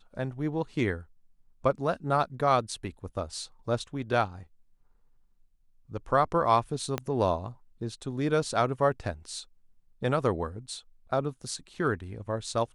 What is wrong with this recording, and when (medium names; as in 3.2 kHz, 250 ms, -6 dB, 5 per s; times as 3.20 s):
6.98 s: pop -15 dBFS